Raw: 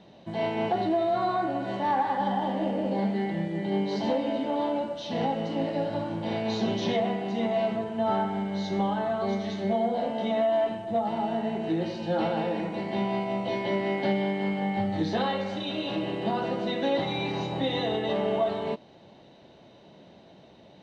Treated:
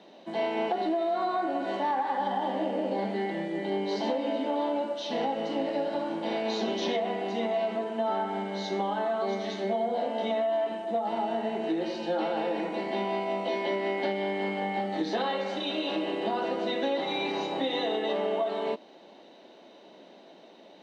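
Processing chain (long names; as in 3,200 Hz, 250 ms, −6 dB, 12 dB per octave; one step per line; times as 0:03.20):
high-pass filter 250 Hz 24 dB per octave
downward compressor, threshold −27 dBFS, peak gain reduction 6 dB
level +2 dB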